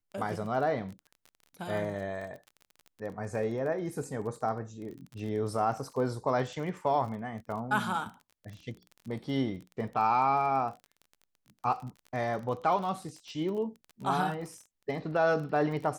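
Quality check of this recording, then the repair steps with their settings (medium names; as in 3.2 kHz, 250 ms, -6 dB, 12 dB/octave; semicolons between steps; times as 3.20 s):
crackle 28 per s -39 dBFS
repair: de-click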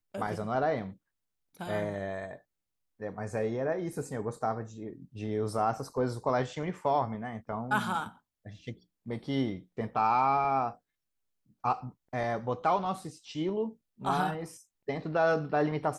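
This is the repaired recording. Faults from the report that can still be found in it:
nothing left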